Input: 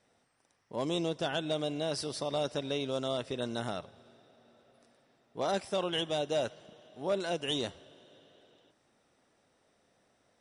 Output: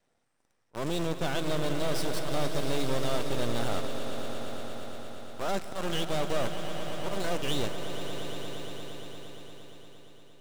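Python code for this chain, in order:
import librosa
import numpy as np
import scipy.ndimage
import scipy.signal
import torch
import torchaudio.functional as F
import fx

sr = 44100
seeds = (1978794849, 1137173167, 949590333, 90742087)

p1 = fx.auto_swell(x, sr, attack_ms=157.0)
p2 = fx.quant_companded(p1, sr, bits=2)
p3 = p1 + (p2 * librosa.db_to_amplitude(-5.0))
p4 = fx.peak_eq(p3, sr, hz=8000.0, db=6.0, octaves=0.88)
p5 = np.maximum(p4, 0.0)
p6 = fx.high_shelf(p5, sr, hz=3700.0, db=-7.0)
y = p6 + fx.echo_swell(p6, sr, ms=116, loudest=5, wet_db=-12, dry=0)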